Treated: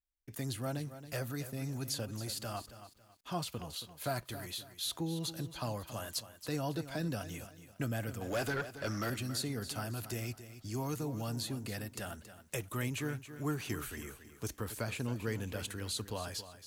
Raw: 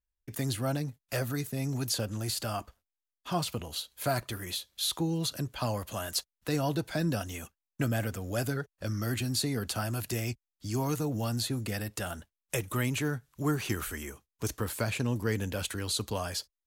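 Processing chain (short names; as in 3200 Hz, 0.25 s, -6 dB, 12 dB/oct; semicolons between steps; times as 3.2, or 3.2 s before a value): 8.21–9.1 overdrive pedal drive 21 dB, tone 3100 Hz, clips at -19 dBFS; lo-fi delay 0.275 s, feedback 35%, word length 9-bit, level -12 dB; gain -6.5 dB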